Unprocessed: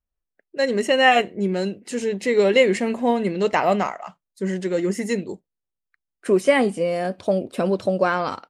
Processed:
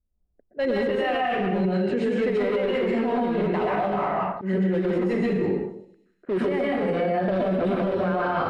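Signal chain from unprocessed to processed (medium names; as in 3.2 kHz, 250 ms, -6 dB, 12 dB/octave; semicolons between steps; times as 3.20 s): treble shelf 5.3 kHz +6.5 dB; in parallel at -9.5 dB: integer overflow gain 15.5 dB; on the sum: plate-style reverb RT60 0.77 s, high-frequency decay 0.85×, pre-delay 110 ms, DRR -5.5 dB; compression 10:1, threshold -20 dBFS, peak gain reduction 16.5 dB; level-controlled noise filter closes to 440 Hz, open at -19.5 dBFS; slow attack 157 ms; distance through air 450 m; peak limiter -22.5 dBFS, peak gain reduction 9.5 dB; feedback echo behind a high-pass 98 ms, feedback 78%, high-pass 5.6 kHz, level -18 dB; trim +6 dB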